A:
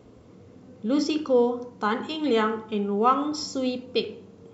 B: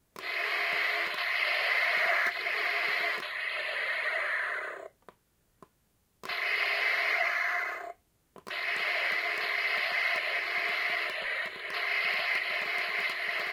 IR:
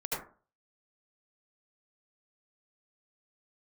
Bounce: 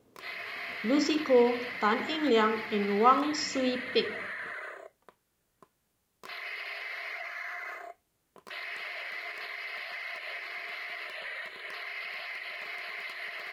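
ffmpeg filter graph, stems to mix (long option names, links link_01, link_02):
-filter_complex "[0:a]agate=range=-10dB:threshold=-46dB:ratio=16:detection=peak,volume=-1dB[link_01];[1:a]alimiter=level_in=3dB:limit=-24dB:level=0:latency=1:release=142,volume=-3dB,volume=-3dB[link_02];[link_01][link_02]amix=inputs=2:normalize=0,lowshelf=frequency=190:gain=-7"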